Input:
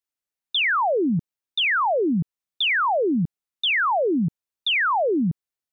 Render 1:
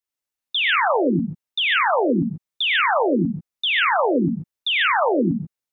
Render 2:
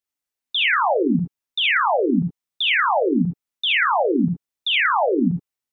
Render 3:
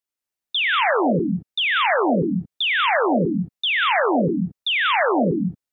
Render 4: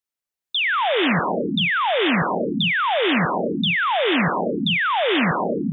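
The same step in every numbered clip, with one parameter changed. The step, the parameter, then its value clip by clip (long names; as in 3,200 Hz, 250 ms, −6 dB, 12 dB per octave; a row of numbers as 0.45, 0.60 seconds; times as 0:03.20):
reverb whose tail is shaped and stops, gate: 160, 90, 240, 510 milliseconds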